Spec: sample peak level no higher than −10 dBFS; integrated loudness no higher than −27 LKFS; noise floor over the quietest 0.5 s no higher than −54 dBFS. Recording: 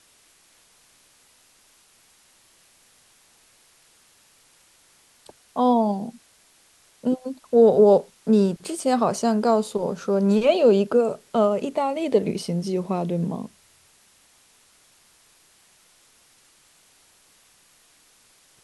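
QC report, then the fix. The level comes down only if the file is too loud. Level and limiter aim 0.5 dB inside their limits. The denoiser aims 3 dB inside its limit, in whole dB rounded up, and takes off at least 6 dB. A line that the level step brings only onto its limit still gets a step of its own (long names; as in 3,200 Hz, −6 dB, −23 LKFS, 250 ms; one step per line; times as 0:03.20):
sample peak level −6.0 dBFS: out of spec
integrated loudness −21.5 LKFS: out of spec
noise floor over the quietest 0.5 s −58 dBFS: in spec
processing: level −6 dB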